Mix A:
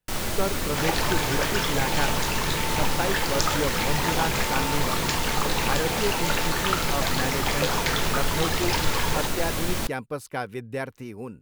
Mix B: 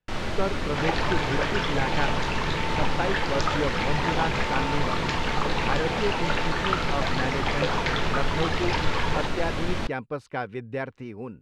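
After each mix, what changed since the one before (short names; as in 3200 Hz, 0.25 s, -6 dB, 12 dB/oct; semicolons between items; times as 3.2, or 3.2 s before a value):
master: add LPF 3500 Hz 12 dB/oct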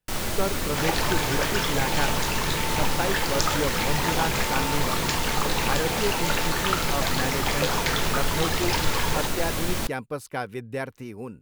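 master: remove LPF 3500 Hz 12 dB/oct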